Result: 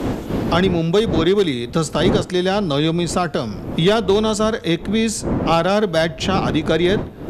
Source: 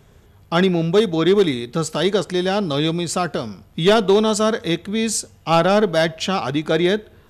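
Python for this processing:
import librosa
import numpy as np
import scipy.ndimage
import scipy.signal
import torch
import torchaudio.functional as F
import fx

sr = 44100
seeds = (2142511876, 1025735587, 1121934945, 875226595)

y = fx.dmg_wind(x, sr, seeds[0], corner_hz=300.0, level_db=-27.0)
y = fx.cheby_harmonics(y, sr, harmonics=(3,), levels_db=(-34,), full_scale_db=-5.0)
y = fx.band_squash(y, sr, depth_pct=70)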